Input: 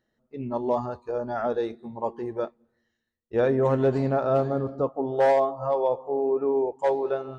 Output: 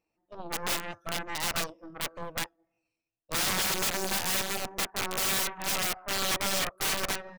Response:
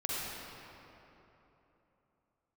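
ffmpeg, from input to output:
-af "asetrate=62367,aresample=44100,atempo=0.707107,aeval=exprs='0.224*(cos(1*acos(clip(val(0)/0.224,-1,1)))-cos(1*PI/2))+0.0708*(cos(3*acos(clip(val(0)/0.224,-1,1)))-cos(3*PI/2))+0.0794*(cos(6*acos(clip(val(0)/0.224,-1,1)))-cos(6*PI/2))+0.0126*(cos(7*acos(clip(val(0)/0.224,-1,1)))-cos(7*PI/2))+0.0355*(cos(8*acos(clip(val(0)/0.224,-1,1)))-cos(8*PI/2))':c=same,aeval=exprs='(mod(18.8*val(0)+1,2)-1)/18.8':c=same,volume=2.5dB"

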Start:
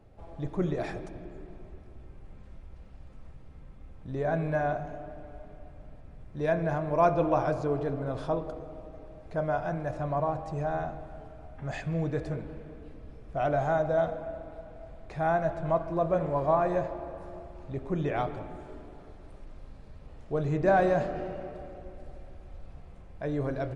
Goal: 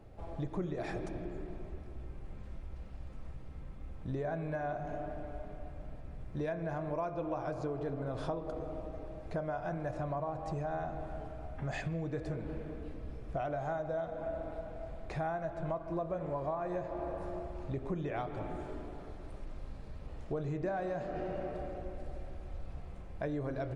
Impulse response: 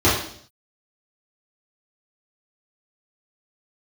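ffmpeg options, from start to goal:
-filter_complex "[0:a]acompressor=threshold=-35dB:ratio=12,asplit=2[a][b];[1:a]atrim=start_sample=2205[c];[b][c]afir=irnorm=-1:irlink=0,volume=-43dB[d];[a][d]amix=inputs=2:normalize=0,volume=2dB"

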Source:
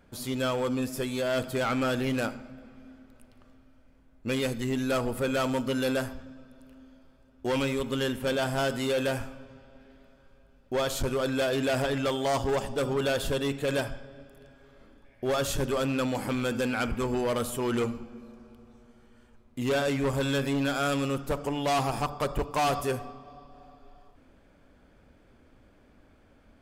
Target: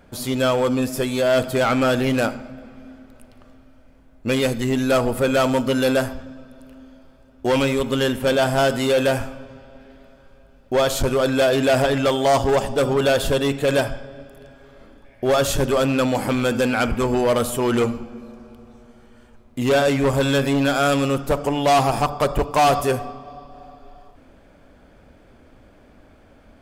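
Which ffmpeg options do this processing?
-af "equalizer=f=660:t=o:w=0.67:g=3.5,volume=8dB"

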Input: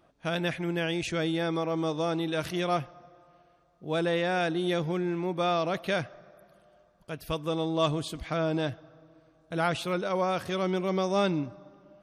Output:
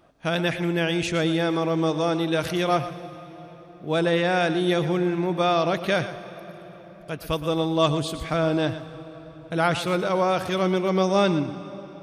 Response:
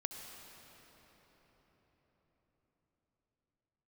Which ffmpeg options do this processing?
-filter_complex "[0:a]asplit=2[a][b];[1:a]atrim=start_sample=2205,highshelf=f=8.6k:g=5.5,adelay=117[c];[b][c]afir=irnorm=-1:irlink=0,volume=-10.5dB[d];[a][d]amix=inputs=2:normalize=0,volume=5.5dB"

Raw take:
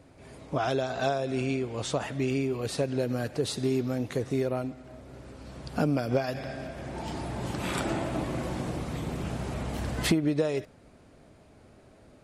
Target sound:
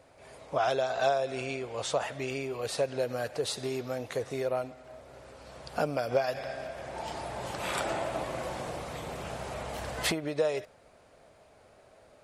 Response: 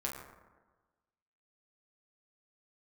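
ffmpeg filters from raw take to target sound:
-af "lowshelf=f=400:t=q:w=1.5:g=-9"

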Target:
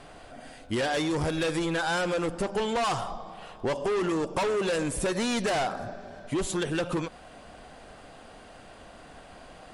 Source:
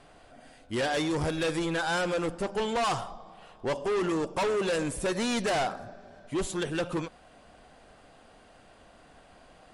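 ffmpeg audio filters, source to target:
-af "acompressor=threshold=-33dB:ratio=6,volume=7dB"

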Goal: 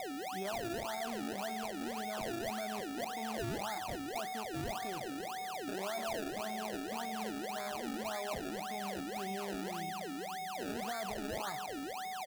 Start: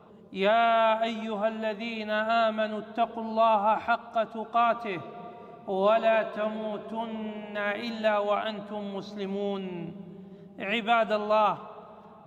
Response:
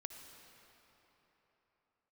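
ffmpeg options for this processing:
-af "aeval=exprs='val(0)+0.0316*sin(2*PI*750*n/s)':c=same,lowpass=f=1.5k:w=0.5412,lowpass=f=1.5k:w=1.3066,alimiter=limit=-23.5dB:level=0:latency=1:release=23,acrusher=samples=29:mix=1:aa=0.000001:lfo=1:lforange=29:lforate=1.8,aecho=1:1:185:0.0631,volume=-8.5dB"

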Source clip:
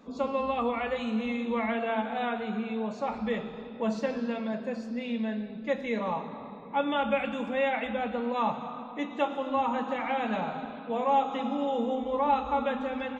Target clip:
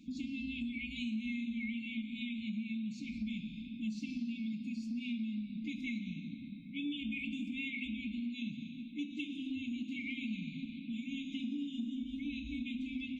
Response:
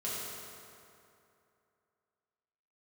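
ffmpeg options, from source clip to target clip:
-af "afftfilt=real='re*(1-between(b*sr/4096,320,2100))':imag='im*(1-between(b*sr/4096,320,2100))':win_size=4096:overlap=0.75,acompressor=threshold=-37dB:ratio=3"

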